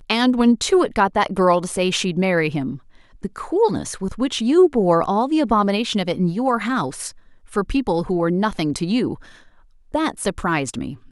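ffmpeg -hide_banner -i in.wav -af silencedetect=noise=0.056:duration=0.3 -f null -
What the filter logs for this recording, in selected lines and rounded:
silence_start: 2.75
silence_end: 3.25 | silence_duration: 0.49
silence_start: 7.09
silence_end: 7.56 | silence_duration: 0.47
silence_start: 9.14
silence_end: 9.94 | silence_duration: 0.80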